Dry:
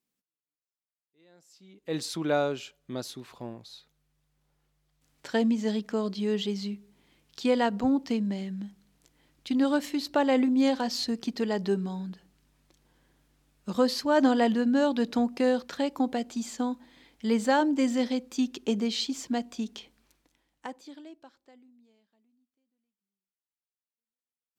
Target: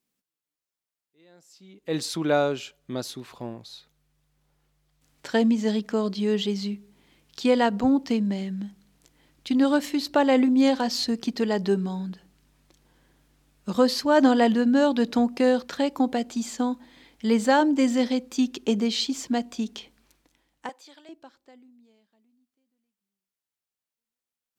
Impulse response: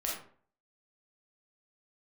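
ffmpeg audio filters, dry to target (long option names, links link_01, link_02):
-filter_complex "[0:a]asettb=1/sr,asplit=3[link_01][link_02][link_03];[link_01]atrim=end=20.694[link_04];[link_02]atrim=start=20.69:end=21.09,asetpts=PTS-STARTPTS,afade=type=in:duration=0.004:curve=qsin,afade=type=out:start_time=0.396:duration=0.004:curve=qsin,highpass=660[link_05];[link_03]atrim=start=21.086[link_06];[link_04][link_05]acrossfade=duration=0.004:curve1=hsin:curve2=qsin[link_07];[link_07][link_06]acrossfade=duration=0.004:curve1=qsin:curve2=hsin,volume=4dB"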